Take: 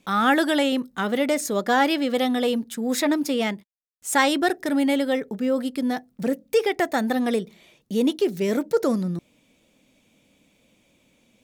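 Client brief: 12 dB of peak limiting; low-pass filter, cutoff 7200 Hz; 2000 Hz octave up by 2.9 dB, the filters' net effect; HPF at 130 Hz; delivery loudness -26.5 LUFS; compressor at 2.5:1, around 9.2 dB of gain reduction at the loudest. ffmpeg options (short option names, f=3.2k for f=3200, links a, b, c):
-af "highpass=130,lowpass=7.2k,equalizer=f=2k:t=o:g=3.5,acompressor=threshold=-28dB:ratio=2.5,volume=7.5dB,alimiter=limit=-18dB:level=0:latency=1"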